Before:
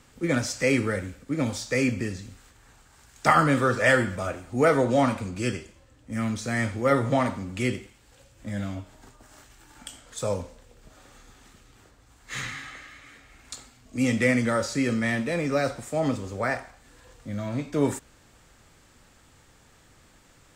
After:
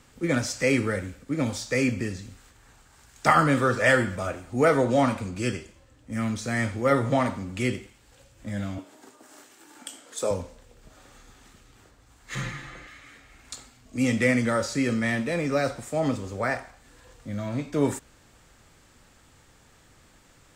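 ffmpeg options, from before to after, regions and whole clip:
-filter_complex "[0:a]asettb=1/sr,asplit=3[a][b][c];[a]atrim=end=8.784[d];[b]atrim=start=8.78:end=10.31,asetpts=PTS-STARTPTS,afade=t=in:d=0.004:c=qsin,afade=t=out:st=1.526:d=0.004:c=qsin,acompressor=mode=upward:threshold=-48dB:ratio=2.5:attack=3.2:release=140:knee=2.83:detection=peak,highpass=f=310:t=q:w=1.8,equalizer=f=11k:t=o:w=1.1:g=3.5[e];[c]atrim=start=10.306[f];[d][e]acrossfade=d=0.004:c1=hsin:c2=qsin[g];[g][f]acrossfade=d=0.004:c1=qsin:c2=hsin,asettb=1/sr,asplit=3[h][i][j];[h]atrim=end=12.354[k];[i]atrim=start=12.35:end=12.87,asetpts=PTS-STARTPTS,afade=t=in:d=0.004:c=qsin,afade=t=out:st=0.516:d=0.004:c=qsin,tiltshelf=f=930:g=6.5,aecho=1:1:5.8:0.75,atrim=end_sample=22932[l];[j]atrim=start=12.866[m];[k][l]acrossfade=d=0.004:c1=hsin:c2=qsin[n];[n][m]acrossfade=d=0.004:c1=qsin:c2=hsin"

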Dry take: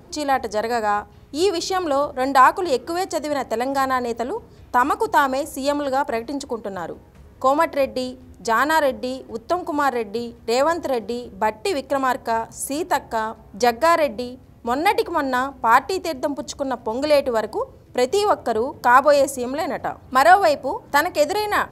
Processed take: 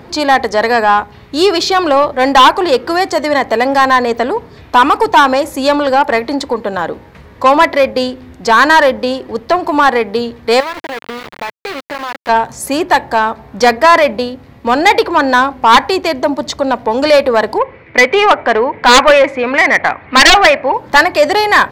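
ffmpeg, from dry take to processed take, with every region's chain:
-filter_complex "[0:a]asettb=1/sr,asplit=3[a][b][c];[a]atrim=end=10.604[d];[b]atrim=start=10.6:end=12.29,asetpts=PTS-STARTPTS,afade=t=in:d=0.004:c=qsin,afade=t=out:st=1.686:d=0.004:c=qsin,lowpass=f=2.2k:p=1,acompressor=threshold=-33dB:ratio=4:attack=3.2:release=140:knee=1:detection=peak,aeval=exprs='val(0)*gte(abs(val(0)),0.0224)':c=same[e];[c]atrim=start=12.286[f];[d][e]acrossfade=d=0.004:c1=hsin:c2=qsin[g];[g][f]acrossfade=d=0.004:c1=qsin:c2=hsin,asettb=1/sr,asplit=3[h][i][j];[h]atrim=end=17.584[k];[i]atrim=start=17.58:end=20.74,asetpts=PTS-STARTPTS,afade=t=in:d=0.004:c=qsin,afade=t=out:st=3.156:d=0.004:c=qsin,lowpass=f=2.2k:t=q:w=4.7,lowshelf=f=230:g=-5.5[l];[j]atrim=start=20.736[m];[k][l]acrossfade=d=0.004:c1=hsin:c2=qsin[n];[n][m]acrossfade=d=0.004:c1=qsin:c2=hsin,equalizer=f=125:t=o:w=1:g=3,equalizer=f=250:t=o:w=1:g=4,equalizer=f=500:t=o:w=1:g=4,equalizer=f=1k:t=o:w=1:g=6,equalizer=f=2k:t=o:w=1:g=11,equalizer=f=4k:t=o:w=1:g=8,equalizer=f=8k:t=o:w=1:g=-3,acontrast=51,volume=-1dB"

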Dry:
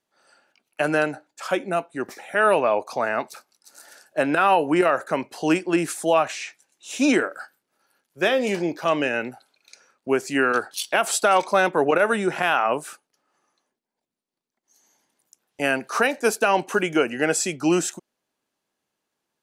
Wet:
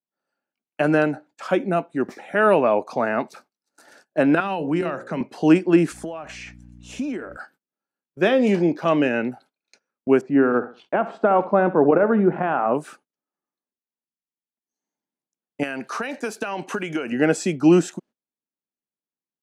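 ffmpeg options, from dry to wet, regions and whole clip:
-filter_complex "[0:a]asettb=1/sr,asplit=3[a][b][c];[a]atrim=end=4.404[d];[b]atrim=start=4.4:end=5.21,asetpts=PTS-STARTPTS,afade=t=in:d=0.004:c=qsin,afade=t=out:st=0.806:d=0.004:c=qsin,lowpass=8.2k,bandreject=f=60:t=h:w=6,bandreject=f=120:t=h:w=6,bandreject=f=180:t=h:w=6,bandreject=f=240:t=h:w=6,bandreject=f=300:t=h:w=6,bandreject=f=360:t=h:w=6,bandreject=f=420:t=h:w=6,bandreject=f=480:t=h:w=6,bandreject=f=540:t=h:w=6,acrossover=split=190|3000[e][f][g];[f]acompressor=threshold=-33dB:ratio=2:attack=3.2:release=140:knee=2.83:detection=peak[h];[e][h][g]amix=inputs=3:normalize=0[i];[c]atrim=start=5.206[j];[d][i]acrossfade=d=0.004:c1=hsin:c2=qsin[k];[k][j]acrossfade=d=0.004:c1=qsin:c2=hsin,asettb=1/sr,asplit=3[l][m][n];[l]atrim=end=5.924[o];[m]atrim=start=5.92:end=7.37,asetpts=PTS-STARTPTS,afade=t=in:d=0.004:c=qsin,afade=t=out:st=1.446:d=0.004:c=qsin,bandreject=f=3.8k:w=11,aeval=exprs='val(0)+0.00398*(sin(2*PI*60*n/s)+sin(2*PI*2*60*n/s)/2+sin(2*PI*3*60*n/s)/3+sin(2*PI*4*60*n/s)/4+sin(2*PI*5*60*n/s)/5)':c=same,acompressor=threshold=-30dB:ratio=16:attack=3.2:release=140:knee=1:detection=peak[p];[n]atrim=start=7.366[q];[o][p]acrossfade=d=0.004:c1=hsin:c2=qsin[r];[r][q]acrossfade=d=0.004:c1=qsin:c2=hsin,asettb=1/sr,asplit=3[s][t][u];[s]atrim=end=10.214[v];[t]atrim=start=10.21:end=12.75,asetpts=PTS-STARTPTS,afade=t=in:d=0.004:c=qsin,afade=t=out:st=2.536:d=0.004:c=qsin,lowpass=1.2k,aecho=1:1:65|130|195:0.178|0.0587|0.0194,atrim=end_sample=112014[w];[u]atrim=start=12.746[x];[v][w]acrossfade=d=0.004:c1=hsin:c2=qsin[y];[y][x]acrossfade=d=0.004:c1=qsin:c2=hsin,asettb=1/sr,asplit=3[z][aa][ab];[z]atrim=end=15.634[ac];[aa]atrim=start=15.63:end=17.12,asetpts=PTS-STARTPTS,afade=t=in:d=0.004:c=qsin,afade=t=out:st=1.486:d=0.004:c=qsin,tiltshelf=f=850:g=-5,acompressor=threshold=-24dB:ratio=10:attack=3.2:release=140:knee=1:detection=peak[ad];[ab]atrim=start=17.116[ae];[ac][ad]acrossfade=d=0.004:c1=hsin:c2=qsin[af];[af][ae]acrossfade=d=0.004:c1=qsin:c2=hsin,aemphasis=mode=reproduction:type=50kf,agate=range=-23dB:threshold=-52dB:ratio=16:detection=peak,equalizer=f=210:t=o:w=1.8:g=9"

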